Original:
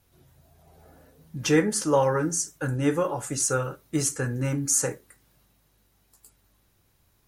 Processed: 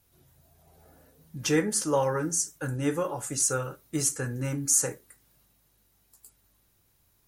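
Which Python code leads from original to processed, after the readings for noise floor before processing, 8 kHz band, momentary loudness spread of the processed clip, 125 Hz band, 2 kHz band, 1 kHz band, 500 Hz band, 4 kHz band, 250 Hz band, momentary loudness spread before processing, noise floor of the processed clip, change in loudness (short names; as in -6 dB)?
-66 dBFS, +0.5 dB, 10 LU, -4.0 dB, -3.5 dB, -4.0 dB, -4.0 dB, -1.5 dB, -4.0 dB, 7 LU, -68 dBFS, -2.0 dB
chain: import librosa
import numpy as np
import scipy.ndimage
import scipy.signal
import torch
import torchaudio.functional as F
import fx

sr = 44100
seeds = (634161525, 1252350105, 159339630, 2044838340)

y = fx.high_shelf(x, sr, hz=6100.0, db=7.0)
y = y * librosa.db_to_amplitude(-4.0)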